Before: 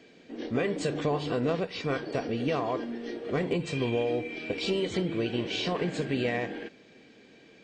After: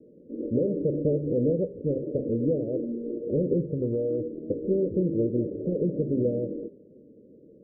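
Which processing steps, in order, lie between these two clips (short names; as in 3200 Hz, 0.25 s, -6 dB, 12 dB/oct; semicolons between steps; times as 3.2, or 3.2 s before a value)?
Chebyshev low-pass 590 Hz, order 8; de-hum 133.9 Hz, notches 31; 3.76–4.2 compressor, threshold -29 dBFS, peak gain reduction 4.5 dB; gain +5 dB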